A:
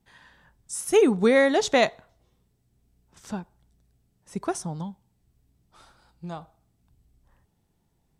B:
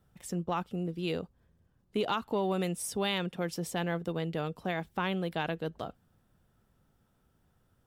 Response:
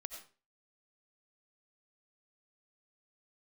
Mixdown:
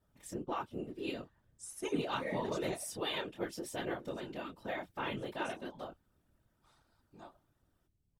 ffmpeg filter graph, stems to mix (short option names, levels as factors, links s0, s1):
-filter_complex "[0:a]adelay=900,volume=0.224,asplit=2[s0][s1];[s1]volume=0.188[s2];[1:a]flanger=delay=22.5:depth=3.3:speed=2.6,volume=1.12,asplit=2[s3][s4];[s4]apad=whole_len=400940[s5];[s0][s5]sidechaincompress=threshold=0.0158:ratio=8:attack=12:release=606[s6];[2:a]atrim=start_sample=2205[s7];[s2][s7]afir=irnorm=-1:irlink=0[s8];[s6][s3][s8]amix=inputs=3:normalize=0,aecho=1:1:3.3:0.93,afftfilt=real='hypot(re,im)*cos(2*PI*random(0))':imag='hypot(re,im)*sin(2*PI*random(1))':win_size=512:overlap=0.75"